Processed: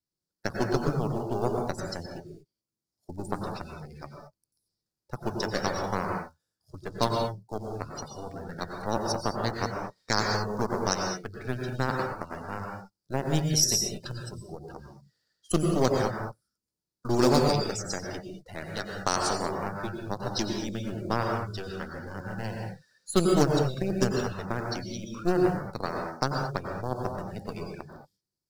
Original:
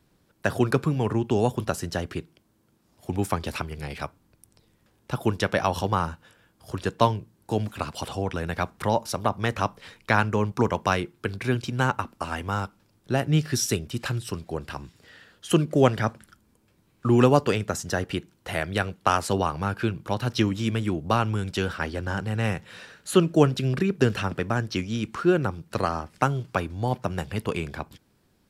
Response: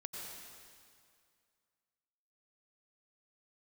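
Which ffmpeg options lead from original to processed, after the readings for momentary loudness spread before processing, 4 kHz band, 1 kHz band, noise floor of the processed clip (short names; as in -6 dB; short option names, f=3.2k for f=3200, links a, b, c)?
11 LU, +0.5 dB, -4.0 dB, under -85 dBFS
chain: -filter_complex "[0:a]acrusher=bits=5:mode=log:mix=0:aa=0.000001,aeval=exprs='0.708*(cos(1*acos(clip(val(0)/0.708,-1,1)))-cos(1*PI/2))+0.0447*(cos(7*acos(clip(val(0)/0.708,-1,1)))-cos(7*PI/2))+0.0708*(cos(8*acos(clip(val(0)/0.708,-1,1)))-cos(8*PI/2))':c=same[a];[1:a]atrim=start_sample=2205,afade=t=out:st=0.29:d=0.01,atrim=end_sample=13230[b];[a][b]afir=irnorm=-1:irlink=0,afftdn=nr=21:nf=-41,highshelf=f=3.7k:t=q:w=3:g=9"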